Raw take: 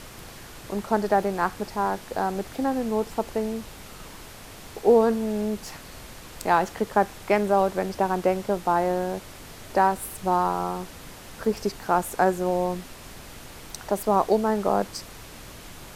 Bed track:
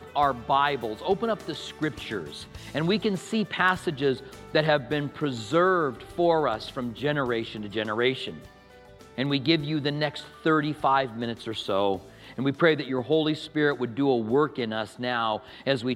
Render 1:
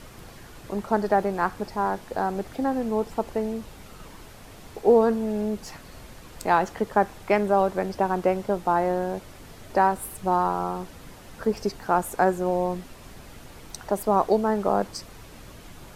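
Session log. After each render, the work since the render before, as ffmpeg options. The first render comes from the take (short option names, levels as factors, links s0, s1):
-af "afftdn=nr=6:nf=-44"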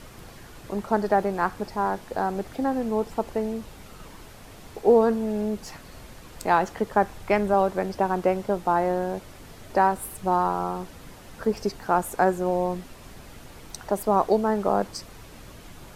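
-filter_complex "[0:a]asettb=1/sr,asplit=3[s0][s1][s2];[s0]atrim=end=6.834[s3];[s1]atrim=start=6.83:end=7.54,asetpts=PTS-STARTPTS,afade=t=in:d=0.004:c=qsin,afade=t=out:st=0.706:d=0.004:c=qsin,asubboost=boost=7:cutoff=170[s4];[s2]atrim=start=7.536[s5];[s3][s4]acrossfade=d=0.004:c1=hsin:c2=qsin[s6];[s6][s5]acrossfade=d=0.004:c1=qsin:c2=hsin"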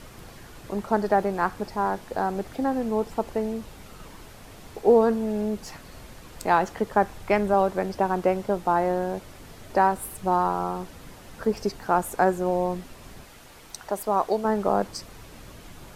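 -filter_complex "[0:a]asettb=1/sr,asplit=3[s0][s1][s2];[s0]atrim=end=13.244[s3];[s1]atrim=start=13.24:end=14.45,asetpts=PTS-STARTPTS,afade=t=in:d=0.004:c=qsin,afade=t=out:st=1.206:d=0.004:c=qsin,lowshelf=f=400:g=-8.5[s4];[s2]atrim=start=14.446[s5];[s3][s4]acrossfade=d=0.004:c1=hsin:c2=qsin[s6];[s6][s5]acrossfade=d=0.004:c1=qsin:c2=hsin"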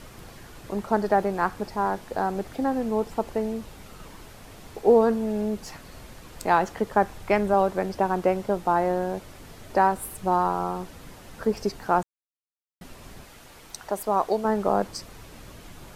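-filter_complex "[0:a]asplit=3[s0][s1][s2];[s0]atrim=end=12.03,asetpts=PTS-STARTPTS,afade=t=out:st=12.026:d=0.004:c=hsin[s3];[s1]atrim=start=12.03:end=12.81,asetpts=PTS-STARTPTS,volume=0[s4];[s2]atrim=start=12.81,asetpts=PTS-STARTPTS,afade=t=in:d=0.004:c=hsin[s5];[s3][s4][s5]concat=n=3:v=0:a=1"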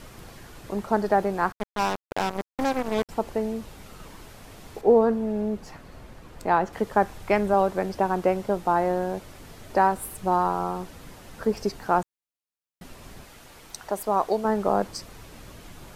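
-filter_complex "[0:a]asettb=1/sr,asplit=3[s0][s1][s2];[s0]atrim=end=1.524[s3];[s1]atrim=start=1.52:end=3.09,asetpts=PTS-STARTPTS,afade=t=in:d=0.004:c=qsin,afade=t=out:st=1.566:d=0.004:c=qsin,acrusher=bits=3:mix=0:aa=0.5[s4];[s2]atrim=start=3.086[s5];[s3][s4]acrossfade=d=0.004:c1=hsin:c2=qsin[s6];[s6][s5]acrossfade=d=0.004:c1=qsin:c2=hsin,asettb=1/sr,asplit=3[s7][s8][s9];[s7]atrim=end=4.814[s10];[s8]atrim=start=4.81:end=6.73,asetpts=PTS-STARTPTS,afade=t=in:d=0.004:c=qsin,afade=t=out:st=1.916:d=0.004:c=qsin,highshelf=f=2800:g=-10[s11];[s9]atrim=start=6.726[s12];[s10][s11]acrossfade=d=0.004:c1=hsin:c2=qsin[s13];[s13][s12]acrossfade=d=0.004:c1=qsin:c2=hsin"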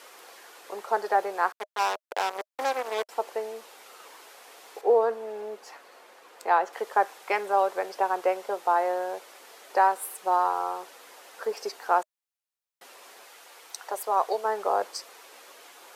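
-af "highpass=f=460:w=0.5412,highpass=f=460:w=1.3066,bandreject=f=620:w=12"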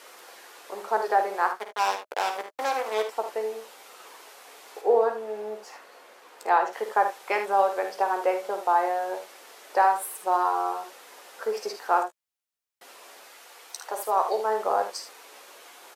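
-filter_complex "[0:a]asplit=2[s0][s1];[s1]adelay=14,volume=0.299[s2];[s0][s2]amix=inputs=2:normalize=0,aecho=1:1:51|76:0.355|0.299"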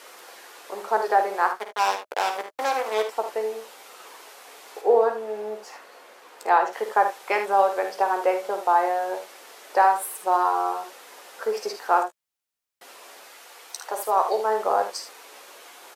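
-af "volume=1.33"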